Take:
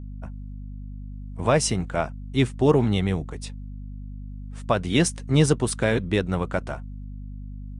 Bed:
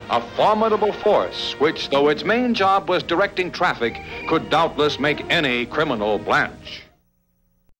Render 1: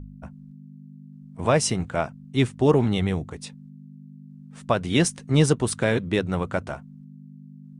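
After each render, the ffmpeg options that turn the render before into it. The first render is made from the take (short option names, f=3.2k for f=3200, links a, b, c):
-af "bandreject=f=50:t=h:w=4,bandreject=f=100:t=h:w=4"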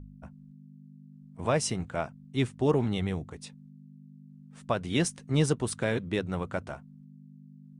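-af "volume=-6.5dB"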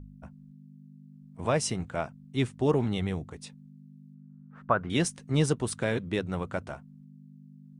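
-filter_complex "[0:a]asettb=1/sr,asplit=3[a][b][c];[a]atrim=end=4.144[d];[b]atrim=start=4.14:end=4.9,asetpts=PTS-STARTPTS,afade=t=in:d=0.004:c=qsin,afade=t=out:st=0.756:d=0.004:c=qsin,lowpass=f=1.4k:t=q:w=3[e];[c]atrim=start=4.896[f];[d][e]acrossfade=d=0.004:c1=hsin:c2=qsin[g];[g][f]acrossfade=d=0.004:c1=qsin:c2=hsin"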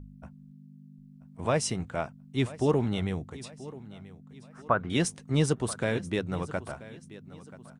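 -af "aecho=1:1:983|1966|2949:0.126|0.0516|0.0212"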